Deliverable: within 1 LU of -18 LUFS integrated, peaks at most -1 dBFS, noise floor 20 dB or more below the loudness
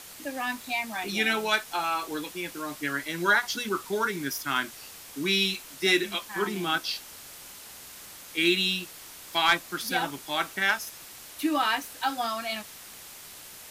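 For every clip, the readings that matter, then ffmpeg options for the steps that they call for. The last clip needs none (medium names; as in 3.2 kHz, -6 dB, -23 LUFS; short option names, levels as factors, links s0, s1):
noise floor -46 dBFS; noise floor target -48 dBFS; loudness -27.5 LUFS; peak level -12.0 dBFS; loudness target -18.0 LUFS
-> -af "afftdn=nr=6:nf=-46"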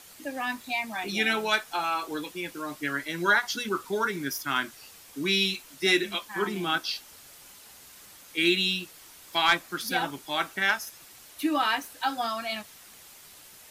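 noise floor -51 dBFS; loudness -28.0 LUFS; peak level -12.0 dBFS; loudness target -18.0 LUFS
-> -af "volume=3.16"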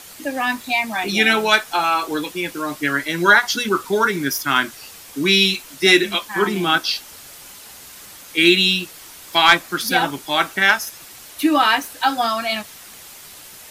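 loudness -18.0 LUFS; peak level -2.0 dBFS; noise floor -41 dBFS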